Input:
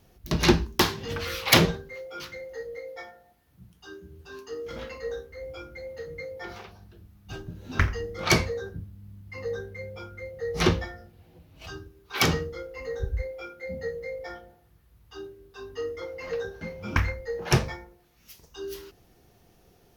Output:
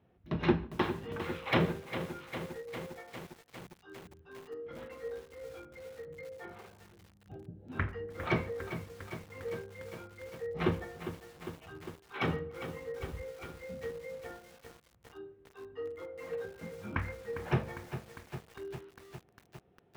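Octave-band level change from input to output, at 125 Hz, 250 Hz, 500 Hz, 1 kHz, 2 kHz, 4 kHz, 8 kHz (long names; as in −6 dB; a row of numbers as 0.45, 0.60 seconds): −8.0, −6.0, −6.5, −7.5, −10.0, −16.5, −22.5 decibels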